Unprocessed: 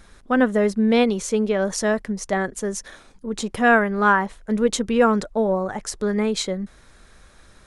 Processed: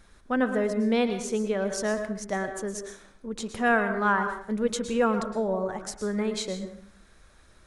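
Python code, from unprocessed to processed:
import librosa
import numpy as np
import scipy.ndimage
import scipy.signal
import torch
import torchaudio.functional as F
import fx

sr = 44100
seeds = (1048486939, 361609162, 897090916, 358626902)

y = fx.rev_plate(x, sr, seeds[0], rt60_s=0.57, hf_ratio=0.7, predelay_ms=100, drr_db=7.5)
y = F.gain(torch.from_numpy(y), -7.0).numpy()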